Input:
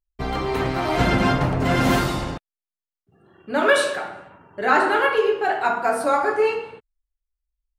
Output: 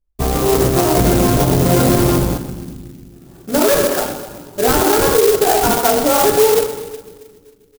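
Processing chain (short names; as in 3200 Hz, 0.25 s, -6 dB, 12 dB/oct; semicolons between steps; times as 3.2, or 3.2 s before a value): on a send at -23 dB: reverb RT60 1.2 s, pre-delay 89 ms; on the sum: dynamic EQ 420 Hz, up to +6 dB, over -31 dBFS, Q 1.3; doubler 17 ms -8 dB; in parallel at -5 dB: decimation with a swept rate 27×, swing 160% 3.2 Hz; on the sum: air absorption 480 m; split-band echo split 320 Hz, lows 0.269 s, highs 0.127 s, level -13 dB; maximiser +10 dB; clock jitter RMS 0.11 ms; gain -4 dB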